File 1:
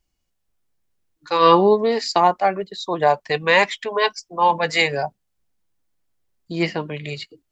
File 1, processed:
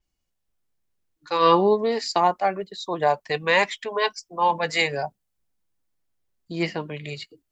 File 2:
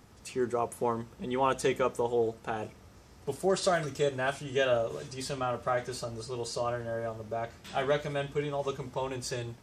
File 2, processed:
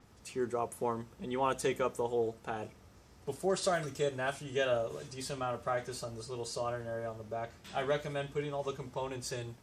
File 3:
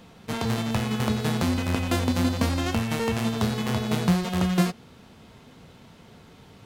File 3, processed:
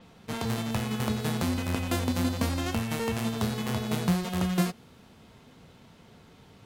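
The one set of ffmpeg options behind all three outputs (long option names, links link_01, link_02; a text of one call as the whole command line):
ffmpeg -i in.wav -af "adynamicequalizer=threshold=0.00562:dfrequency=7900:dqfactor=0.7:tfrequency=7900:tqfactor=0.7:attack=5:release=100:ratio=0.375:range=2.5:mode=boostabove:tftype=highshelf,volume=-4dB" out.wav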